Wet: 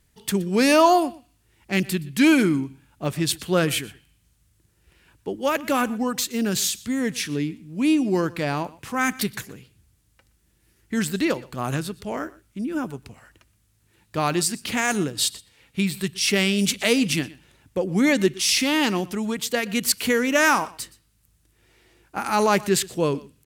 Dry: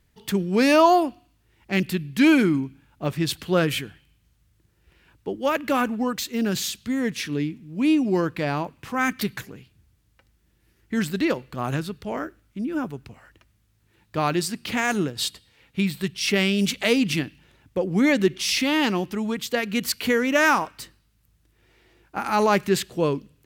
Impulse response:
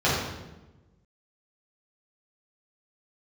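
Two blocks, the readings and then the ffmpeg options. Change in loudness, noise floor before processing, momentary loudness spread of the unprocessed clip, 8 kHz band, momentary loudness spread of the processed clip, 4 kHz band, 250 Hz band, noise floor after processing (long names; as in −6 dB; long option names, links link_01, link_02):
+0.5 dB, −65 dBFS, 13 LU, +6.5 dB, 13 LU, +2.0 dB, 0.0 dB, −65 dBFS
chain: -filter_complex "[0:a]equalizer=frequency=9200:width=0.76:gain=8.5,asplit=2[link_01][link_02];[link_02]aecho=0:1:121:0.0891[link_03];[link_01][link_03]amix=inputs=2:normalize=0"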